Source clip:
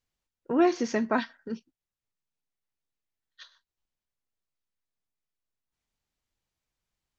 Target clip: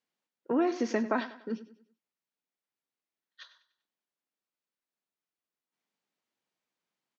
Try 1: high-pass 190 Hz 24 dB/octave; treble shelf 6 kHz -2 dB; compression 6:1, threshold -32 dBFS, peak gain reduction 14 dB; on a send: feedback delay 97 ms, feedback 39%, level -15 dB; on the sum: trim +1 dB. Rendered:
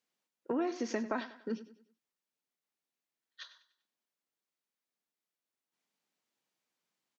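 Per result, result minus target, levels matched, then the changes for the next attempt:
compression: peak gain reduction +6.5 dB; 8 kHz band +5.0 dB
change: compression 6:1, threshold -24.5 dBFS, peak gain reduction 8 dB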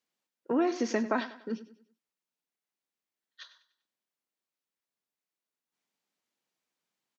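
8 kHz band +4.5 dB
change: treble shelf 6 kHz -10.5 dB

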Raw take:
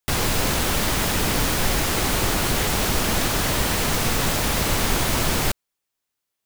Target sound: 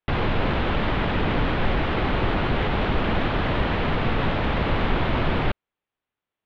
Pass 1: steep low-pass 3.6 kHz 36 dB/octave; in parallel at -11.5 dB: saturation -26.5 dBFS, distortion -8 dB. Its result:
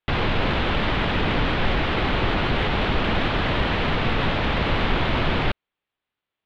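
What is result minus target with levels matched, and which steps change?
4 kHz band +4.0 dB
add after steep low-pass: treble shelf 2.7 kHz -9 dB

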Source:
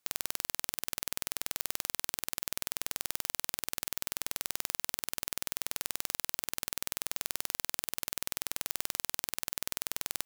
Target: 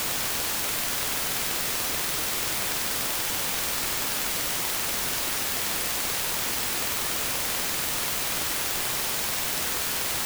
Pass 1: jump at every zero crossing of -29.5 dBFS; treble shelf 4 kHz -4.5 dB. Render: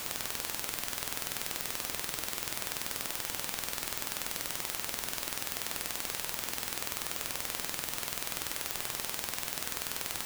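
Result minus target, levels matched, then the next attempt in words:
jump at every zero crossing: distortion -10 dB
jump at every zero crossing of -18.5 dBFS; treble shelf 4 kHz -4.5 dB

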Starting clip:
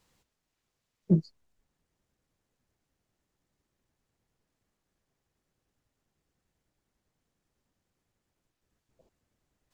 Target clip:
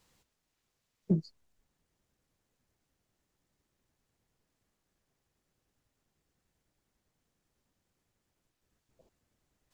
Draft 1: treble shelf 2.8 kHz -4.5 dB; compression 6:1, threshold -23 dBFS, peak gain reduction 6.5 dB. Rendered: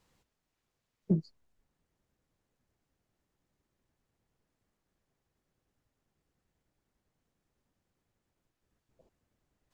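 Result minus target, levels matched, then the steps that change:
4 kHz band -4.5 dB
change: treble shelf 2.8 kHz +2 dB

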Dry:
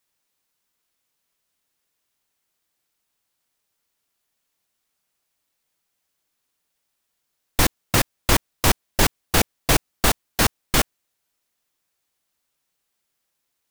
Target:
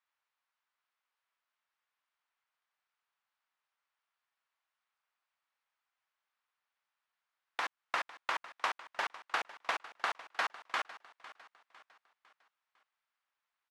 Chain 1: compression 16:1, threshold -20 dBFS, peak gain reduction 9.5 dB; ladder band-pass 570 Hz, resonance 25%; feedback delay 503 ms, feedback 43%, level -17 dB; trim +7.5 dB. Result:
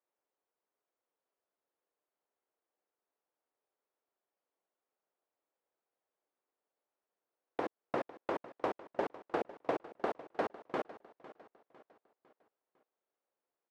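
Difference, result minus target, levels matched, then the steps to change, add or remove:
500 Hz band +13.0 dB
change: ladder band-pass 1.4 kHz, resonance 25%

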